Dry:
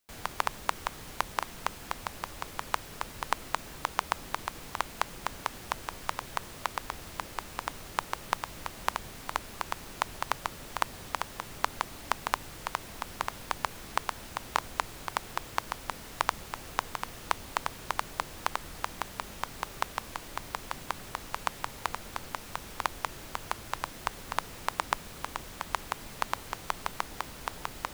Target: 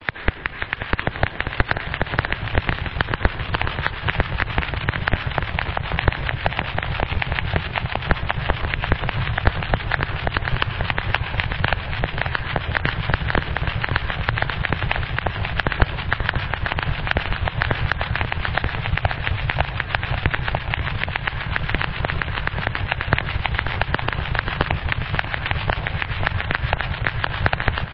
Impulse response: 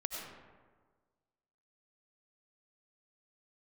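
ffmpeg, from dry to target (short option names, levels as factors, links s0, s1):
-filter_complex "[0:a]areverse,asubboost=boost=10:cutoff=160,aeval=exprs='0.531*(cos(1*acos(clip(val(0)/0.531,-1,1)))-cos(1*PI/2))+0.0168*(cos(2*acos(clip(val(0)/0.531,-1,1)))-cos(2*PI/2))+0.0119*(cos(5*acos(clip(val(0)/0.531,-1,1)))-cos(5*PI/2))+0.106*(cos(7*acos(clip(val(0)/0.531,-1,1)))-cos(7*PI/2))+0.237*(cos(8*acos(clip(val(0)/0.531,-1,1)))-cos(8*PI/2))':c=same,acompressor=threshold=0.0501:ratio=2,equalizer=f=490:t=o:w=2:g=-7,acrossover=split=1000[s0][s1];[s0]aeval=exprs='val(0)*(1-0.7/2+0.7/2*cos(2*PI*7.4*n/s))':c=same[s2];[s1]aeval=exprs='val(0)*(1-0.7/2-0.7/2*cos(2*PI*7.4*n/s))':c=same[s3];[s2][s3]amix=inputs=2:normalize=0,aecho=1:1:536|1072|1608|2144|2680:0.282|0.124|0.0546|0.024|0.0106,asplit=2[s4][s5];[1:a]atrim=start_sample=2205,afade=t=out:st=0.43:d=0.01,atrim=end_sample=19404[s6];[s5][s6]afir=irnorm=-1:irlink=0,volume=0.237[s7];[s4][s7]amix=inputs=2:normalize=0,highpass=f=170:t=q:w=0.5412,highpass=f=170:t=q:w=1.307,lowpass=f=3600:t=q:w=0.5176,lowpass=f=3600:t=q:w=0.7071,lowpass=f=3600:t=q:w=1.932,afreqshift=-270,alimiter=level_in=13.3:limit=0.891:release=50:level=0:latency=1,volume=0.891" -ar 16000 -c:a libmp3lame -b:a 24k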